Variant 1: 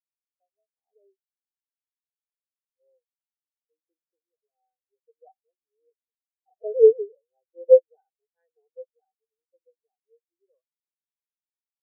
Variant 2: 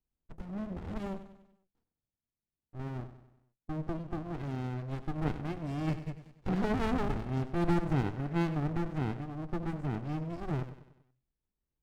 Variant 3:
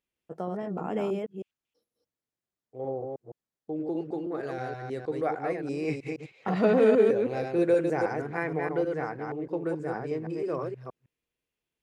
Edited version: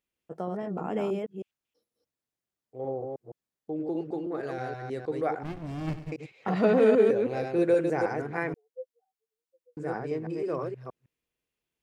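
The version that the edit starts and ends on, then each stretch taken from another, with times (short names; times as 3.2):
3
5.43–6.12 from 2
8.54–9.77 from 1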